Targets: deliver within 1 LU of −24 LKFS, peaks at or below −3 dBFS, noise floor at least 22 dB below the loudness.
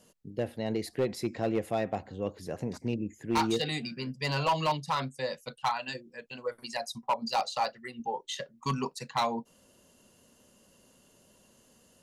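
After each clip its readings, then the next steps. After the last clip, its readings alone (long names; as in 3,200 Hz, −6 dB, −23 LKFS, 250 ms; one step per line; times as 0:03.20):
share of clipped samples 0.8%; peaks flattened at −21.5 dBFS; integrated loudness −33.0 LKFS; sample peak −21.5 dBFS; target loudness −24.0 LKFS
→ clipped peaks rebuilt −21.5 dBFS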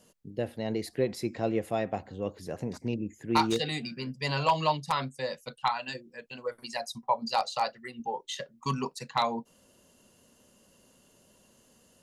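share of clipped samples 0.0%; integrated loudness −32.0 LKFS; sample peak −12.5 dBFS; target loudness −24.0 LKFS
→ level +8 dB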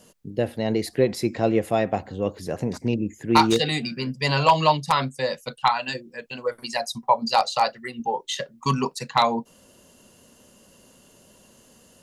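integrated loudness −24.0 LKFS; sample peak −4.5 dBFS; background noise floor −55 dBFS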